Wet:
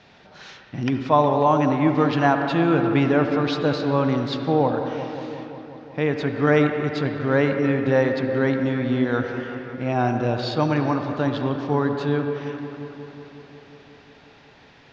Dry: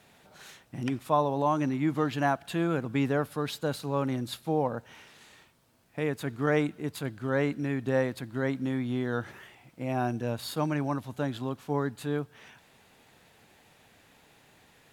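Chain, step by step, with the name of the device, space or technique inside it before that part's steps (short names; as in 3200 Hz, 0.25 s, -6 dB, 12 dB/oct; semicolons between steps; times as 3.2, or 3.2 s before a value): steep low-pass 5800 Hz 48 dB/oct; dark delay 0.181 s, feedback 76%, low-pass 2300 Hz, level -11 dB; filtered reverb send (on a send at -6 dB: HPF 210 Hz 12 dB/oct + LPF 3200 Hz 12 dB/oct + reverb RT60 2.1 s, pre-delay 64 ms); on the sum: gain +7.5 dB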